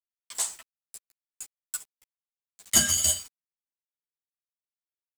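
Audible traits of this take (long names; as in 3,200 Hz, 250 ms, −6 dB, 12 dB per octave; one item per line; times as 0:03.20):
a quantiser's noise floor 8 bits, dither none
tremolo saw up 0.57 Hz, depth 50%
a shimmering, thickened sound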